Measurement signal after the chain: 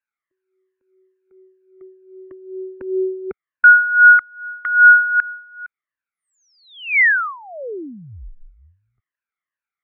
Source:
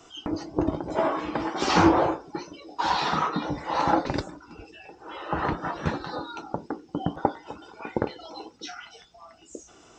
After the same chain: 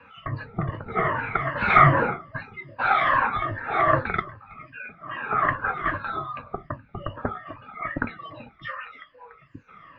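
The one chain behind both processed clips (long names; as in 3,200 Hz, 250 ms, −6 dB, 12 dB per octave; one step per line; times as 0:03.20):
rippled gain that drifts along the octave scale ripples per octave 1.5, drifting −2.5 Hz, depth 16 dB
flat-topped bell 1,800 Hz +15 dB 1.1 octaves
single-sideband voice off tune −190 Hz 210–3,600 Hz
level −5 dB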